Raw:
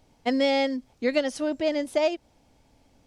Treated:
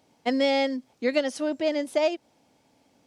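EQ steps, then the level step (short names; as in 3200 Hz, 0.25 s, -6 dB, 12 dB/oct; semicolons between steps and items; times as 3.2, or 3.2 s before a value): HPF 170 Hz 12 dB/oct; 0.0 dB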